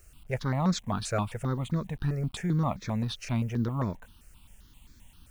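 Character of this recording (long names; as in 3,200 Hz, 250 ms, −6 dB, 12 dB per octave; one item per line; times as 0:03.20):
a quantiser's noise floor 10 bits, dither none
notches that jump at a steady rate 7.6 Hz 940–2,900 Hz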